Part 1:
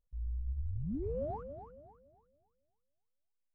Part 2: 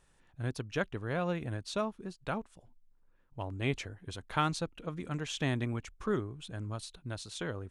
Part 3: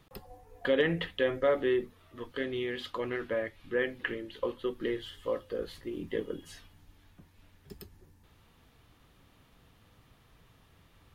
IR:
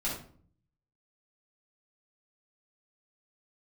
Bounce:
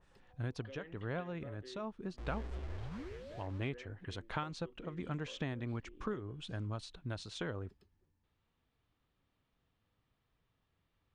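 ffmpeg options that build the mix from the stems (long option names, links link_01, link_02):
-filter_complex "[0:a]acrusher=bits=6:mix=0:aa=0.000001,adelay=2050,volume=-6dB,afade=type=out:start_time=2.84:duration=0.41:silence=0.398107[link_01];[1:a]acompressor=threshold=-35dB:ratio=6,volume=0.5dB[link_02];[2:a]acompressor=threshold=-43dB:ratio=1.5,volume=-18.5dB,asplit=2[link_03][link_04];[link_04]apad=whole_len=339874[link_05];[link_02][link_05]sidechaincompress=threshold=-57dB:ratio=8:attack=46:release=105[link_06];[link_01][link_06][link_03]amix=inputs=3:normalize=0,lowpass=5400,adynamicequalizer=threshold=0.00126:dfrequency=2600:dqfactor=0.7:tfrequency=2600:tqfactor=0.7:attack=5:release=100:ratio=0.375:range=2:mode=cutabove:tftype=highshelf"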